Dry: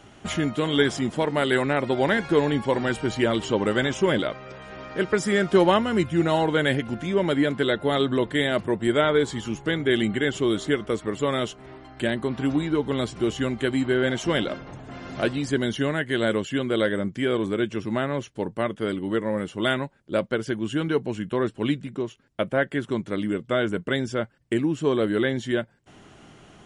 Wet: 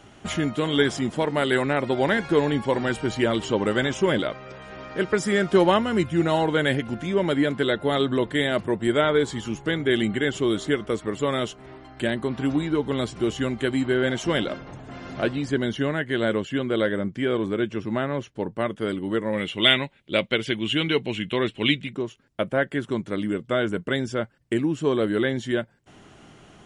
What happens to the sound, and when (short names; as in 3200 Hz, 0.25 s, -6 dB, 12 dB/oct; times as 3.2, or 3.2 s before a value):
15.13–18.61 high shelf 6500 Hz -10.5 dB
19.33–21.93 band shelf 2800 Hz +13 dB 1.2 oct